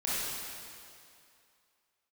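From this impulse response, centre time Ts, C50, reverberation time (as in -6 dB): 0.171 s, -5.5 dB, 2.5 s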